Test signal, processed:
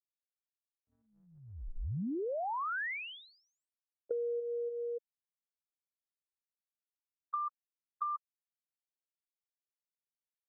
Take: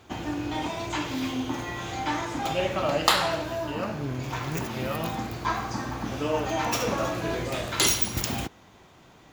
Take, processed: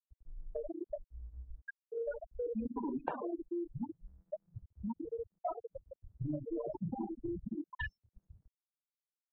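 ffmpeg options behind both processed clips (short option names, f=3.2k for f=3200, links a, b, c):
-af "afftfilt=real='re*gte(hypot(re,im),0.178)':imag='im*gte(hypot(re,im),0.178)':win_size=1024:overlap=0.75,highpass=f=460:t=q:w=0.5412,highpass=f=460:t=q:w=1.307,lowpass=f=2.2k:t=q:w=0.5176,lowpass=f=2.2k:t=q:w=0.7071,lowpass=f=2.2k:t=q:w=1.932,afreqshift=-320,acompressor=threshold=-41dB:ratio=5,volume=4.5dB"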